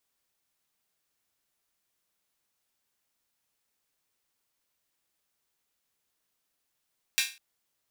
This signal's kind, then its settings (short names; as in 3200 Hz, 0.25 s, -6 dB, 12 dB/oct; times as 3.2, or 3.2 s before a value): open hi-hat length 0.20 s, high-pass 2300 Hz, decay 0.32 s